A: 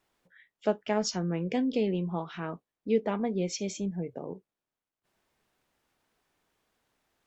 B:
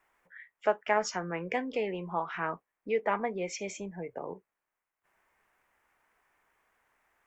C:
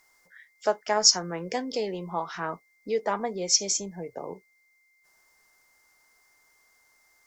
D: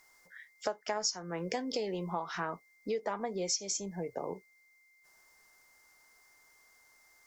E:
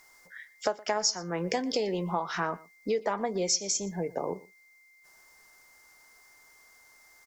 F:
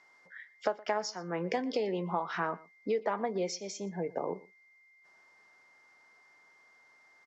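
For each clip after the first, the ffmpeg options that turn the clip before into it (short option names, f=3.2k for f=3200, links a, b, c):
-filter_complex "[0:a]equalizer=f=125:t=o:w=1:g=-6,equalizer=f=250:t=o:w=1:g=-5,equalizer=f=1k:t=o:w=1:g=6,equalizer=f=2k:t=o:w=1:g=10,equalizer=f=4k:t=o:w=1:g=-11,acrossover=split=370[a][b];[a]alimiter=level_in=11.5dB:limit=-24dB:level=0:latency=1:release=323,volume=-11.5dB[c];[c][b]amix=inputs=2:normalize=0"
-af "aeval=exprs='val(0)+0.001*sin(2*PI*2100*n/s)':c=same,highshelf=f=3.5k:t=q:w=3:g=12,volume=2.5dB"
-af "acompressor=threshold=-31dB:ratio=6"
-af "aecho=1:1:119:0.0841,volume=5.5dB"
-af "highpass=150,lowpass=3.2k,volume=-2dB"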